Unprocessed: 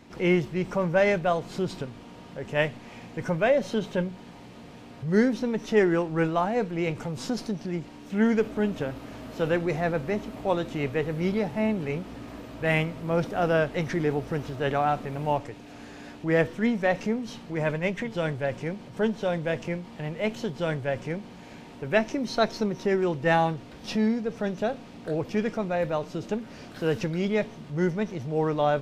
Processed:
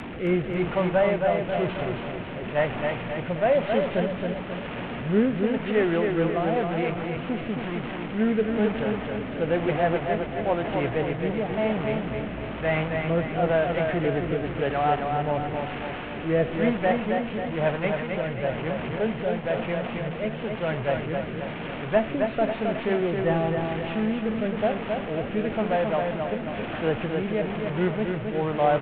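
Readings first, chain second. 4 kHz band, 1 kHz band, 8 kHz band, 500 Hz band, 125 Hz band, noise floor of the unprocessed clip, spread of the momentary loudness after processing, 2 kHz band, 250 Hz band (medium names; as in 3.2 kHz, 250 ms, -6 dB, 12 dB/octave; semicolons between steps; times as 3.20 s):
+0.5 dB, +2.5 dB, under -30 dB, +2.0 dB, +1.5 dB, -45 dBFS, 7 LU, +0.5 dB, +1.0 dB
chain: one-bit delta coder 16 kbps, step -26.5 dBFS; dynamic bell 700 Hz, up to +6 dB, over -39 dBFS, Q 2.2; rotary cabinet horn 1 Hz; feedback delay 268 ms, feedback 51%, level -4.5 dB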